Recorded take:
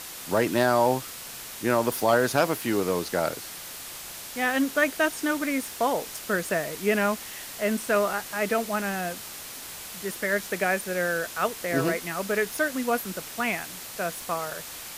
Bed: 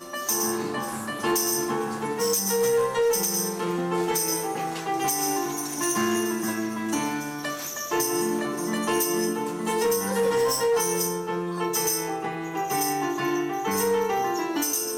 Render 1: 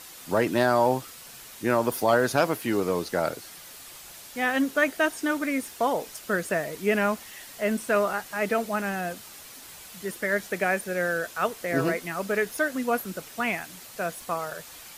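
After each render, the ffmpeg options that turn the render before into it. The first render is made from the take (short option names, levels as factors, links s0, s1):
-af "afftdn=nr=7:nf=-40"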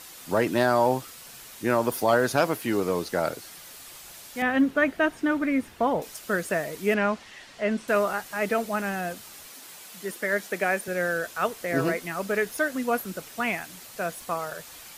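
-filter_complex "[0:a]asettb=1/sr,asplit=3[s0][s1][s2];[s0]atrim=end=4.424[s3];[s1]atrim=start=4.42:end=6.02,asetpts=PTS-STARTPTS,afade=t=in:d=0.004:c=qsin,afade=t=out:st=1.596:d=0.004:c=qsin,bass=f=250:g=9,treble=f=4000:g=-13[s4];[s2]atrim=start=6.016[s5];[s3][s4]acrossfade=d=0.004:c1=hsin:c2=qsin[s6];[s6][s5]acrossfade=d=0.004:c1=qsin:c2=hsin,asettb=1/sr,asplit=3[s7][s8][s9];[s7]atrim=end=6.944[s10];[s8]atrim=start=6.94:end=7.88,asetpts=PTS-STARTPTS,afade=t=in:d=0.004:c=qsin,afade=t=out:st=0.936:d=0.004:c=qsin,lowpass=4800[s11];[s9]atrim=start=7.876[s12];[s10][s11]acrossfade=d=0.004:c1=hsin:c2=qsin[s13];[s13][s12]acrossfade=d=0.004:c1=qsin:c2=hsin,asettb=1/sr,asplit=3[s14][s15][s16];[s14]atrim=end=9.484[s17];[s15]atrim=start=9.48:end=10.88,asetpts=PTS-STARTPTS,afade=t=in:d=0.004:c=qsin,afade=t=out:st=1.396:d=0.004:c=qsin,highpass=180[s18];[s16]atrim=start=10.876[s19];[s17][s18]acrossfade=d=0.004:c1=hsin:c2=qsin[s20];[s20][s19]acrossfade=d=0.004:c1=qsin:c2=hsin"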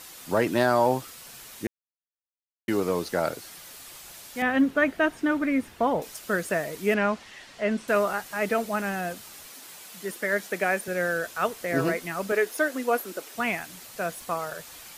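-filter_complex "[0:a]asettb=1/sr,asplit=3[s0][s1][s2];[s0]atrim=end=12.324[s3];[s1]atrim=start=12.32:end=13.35,asetpts=PTS-STARTPTS,afade=t=in:d=0.004:c=qsin,afade=t=out:st=1.026:d=0.004:c=qsin,lowshelf=f=220:t=q:w=1.5:g=-13.5[s4];[s2]atrim=start=13.346[s5];[s3][s4]acrossfade=d=0.004:c1=hsin:c2=qsin[s6];[s6][s5]acrossfade=d=0.004:c1=qsin:c2=hsin,asplit=3[s7][s8][s9];[s7]atrim=end=1.67,asetpts=PTS-STARTPTS,afade=t=out:st=1.666:d=0.004:c=hsin[s10];[s8]atrim=start=1.67:end=2.68,asetpts=PTS-STARTPTS,volume=0[s11];[s9]atrim=start=2.68,asetpts=PTS-STARTPTS,afade=t=in:d=0.004:c=hsin[s12];[s10][s11][s12]concat=n=3:v=0:a=1"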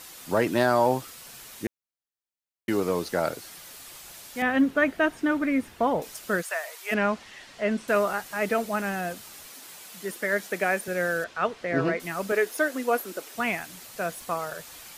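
-filter_complex "[0:a]asplit=3[s0][s1][s2];[s0]afade=t=out:st=6.41:d=0.02[s3];[s1]highpass=f=720:w=0.5412,highpass=f=720:w=1.3066,afade=t=in:st=6.41:d=0.02,afade=t=out:st=6.91:d=0.02[s4];[s2]afade=t=in:st=6.91:d=0.02[s5];[s3][s4][s5]amix=inputs=3:normalize=0,asettb=1/sr,asplit=3[s6][s7][s8];[s6]atrim=end=11.244[s9];[s7]atrim=start=11.24:end=12,asetpts=PTS-STARTPTS,afade=t=in:d=0.004:c=qsin,afade=t=out:st=0.756:d=0.004:c=qsin,lowpass=3900[s10];[s8]atrim=start=11.996[s11];[s9][s10]acrossfade=d=0.004:c1=hsin:c2=qsin[s12];[s12][s11]acrossfade=d=0.004:c1=qsin:c2=hsin"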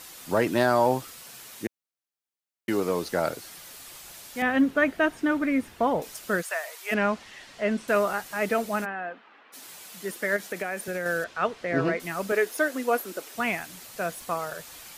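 -filter_complex "[0:a]asettb=1/sr,asplit=3[s0][s1][s2];[s0]atrim=end=1.214[s3];[s1]atrim=start=1.21:end=3.03,asetpts=PTS-STARTPTS,afade=t=in:d=0.004:c=qsin,afade=t=out:st=1.816:d=0.004:c=qsin,highpass=f=110:p=1[s4];[s2]atrim=start=3.026[s5];[s3][s4]acrossfade=d=0.004:c1=hsin:c2=qsin[s6];[s6][s5]acrossfade=d=0.004:c1=qsin:c2=hsin,asplit=3[s7][s8][s9];[s7]afade=t=out:st=8.84:d=0.02[s10];[s8]highpass=f=270:w=0.5412,highpass=f=270:w=1.3066,equalizer=f=360:t=q:w=4:g=-7,equalizer=f=590:t=q:w=4:g=-6,equalizer=f=2200:t=q:w=4:g=-4,lowpass=f=2400:w=0.5412,lowpass=f=2400:w=1.3066,afade=t=in:st=8.84:d=0.02,afade=t=out:st=9.52:d=0.02[s11];[s9]afade=t=in:st=9.52:d=0.02[s12];[s10][s11][s12]amix=inputs=3:normalize=0,asettb=1/sr,asplit=3[s13][s14][s15];[s13]atrim=end=10.364[s16];[s14]atrim=start=10.36:end=11.06,asetpts=PTS-STARTPTS,afade=t=in:d=0.004:c=qsin,afade=t=out:st=0.696:d=0.004:c=qsin,acompressor=threshold=0.0501:ratio=6:attack=3.2:release=140:knee=1:detection=peak[s17];[s15]atrim=start=11.056[s18];[s16][s17]acrossfade=d=0.004:c1=hsin:c2=qsin[s19];[s19][s18]acrossfade=d=0.004:c1=qsin:c2=hsin"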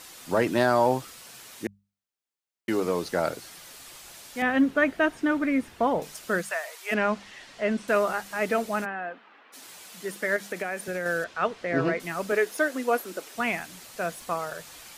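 -af "equalizer=f=14000:w=1:g=-5,bandreject=f=50:t=h:w=6,bandreject=f=100:t=h:w=6,bandreject=f=150:t=h:w=6,bandreject=f=200:t=h:w=6"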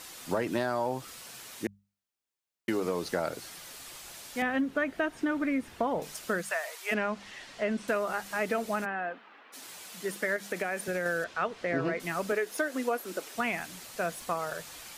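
-af "acompressor=threshold=0.0501:ratio=6"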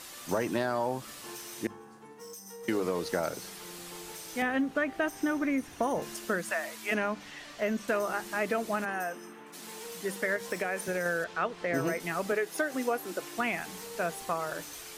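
-filter_complex "[1:a]volume=0.0794[s0];[0:a][s0]amix=inputs=2:normalize=0"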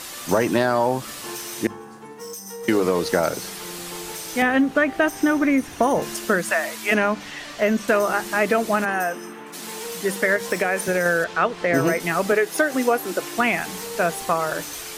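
-af "volume=3.35"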